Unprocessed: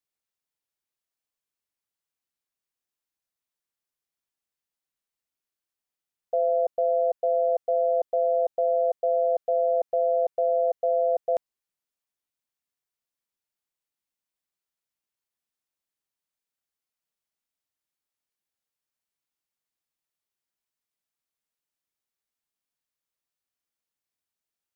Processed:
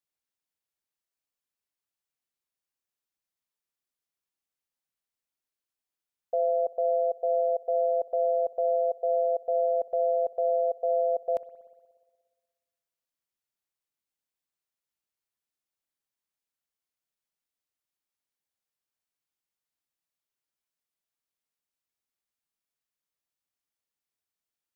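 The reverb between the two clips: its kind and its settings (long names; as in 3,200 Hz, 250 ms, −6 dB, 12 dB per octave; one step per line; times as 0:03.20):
spring reverb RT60 1.5 s, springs 60 ms, DRR 17 dB
level −2.5 dB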